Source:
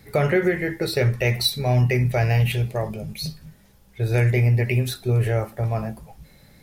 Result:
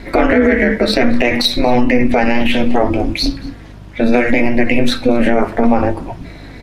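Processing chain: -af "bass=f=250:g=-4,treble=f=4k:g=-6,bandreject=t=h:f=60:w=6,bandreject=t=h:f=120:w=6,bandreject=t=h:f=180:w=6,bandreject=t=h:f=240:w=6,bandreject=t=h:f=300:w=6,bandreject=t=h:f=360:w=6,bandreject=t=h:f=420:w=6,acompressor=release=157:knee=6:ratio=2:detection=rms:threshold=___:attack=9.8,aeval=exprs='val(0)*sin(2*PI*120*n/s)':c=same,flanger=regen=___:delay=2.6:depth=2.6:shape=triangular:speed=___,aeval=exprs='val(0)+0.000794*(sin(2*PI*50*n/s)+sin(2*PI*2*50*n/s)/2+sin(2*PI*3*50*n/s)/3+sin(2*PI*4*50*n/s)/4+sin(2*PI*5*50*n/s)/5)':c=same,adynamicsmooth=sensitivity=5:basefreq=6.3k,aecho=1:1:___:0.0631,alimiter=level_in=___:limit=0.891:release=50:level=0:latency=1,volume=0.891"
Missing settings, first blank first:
0.0316, 72, 0.65, 231, 25.1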